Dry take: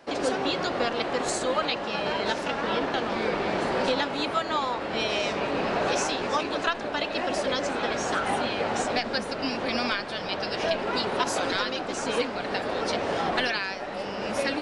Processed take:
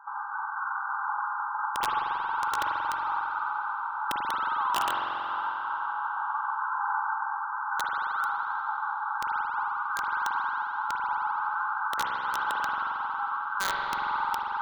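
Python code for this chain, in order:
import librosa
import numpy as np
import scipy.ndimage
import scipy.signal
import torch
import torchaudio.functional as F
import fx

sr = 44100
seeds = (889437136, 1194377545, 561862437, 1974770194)

y = fx.over_compress(x, sr, threshold_db=-32.0, ratio=-1.0)
y = fx.brickwall_bandpass(y, sr, low_hz=800.0, high_hz=1600.0)
y = (np.mod(10.0 ** (27.0 / 20.0) * y + 1.0, 2.0) - 1.0) / 10.0 ** (27.0 / 20.0)
y = fx.rev_spring(y, sr, rt60_s=3.1, pass_ms=(45,), chirp_ms=35, drr_db=-1.5)
y = F.gain(torch.from_numpy(y), 5.0).numpy()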